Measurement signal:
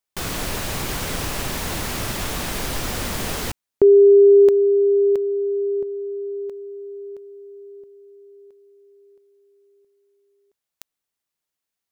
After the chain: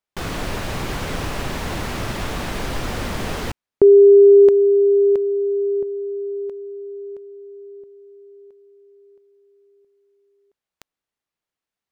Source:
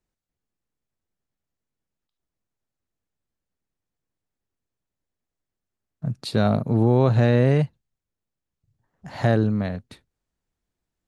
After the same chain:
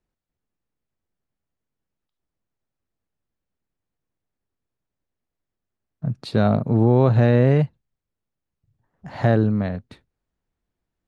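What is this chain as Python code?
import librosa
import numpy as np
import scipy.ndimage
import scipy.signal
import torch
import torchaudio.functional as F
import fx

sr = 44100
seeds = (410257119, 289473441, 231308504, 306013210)

y = fx.lowpass(x, sr, hz=2600.0, slope=6)
y = F.gain(torch.from_numpy(y), 2.0).numpy()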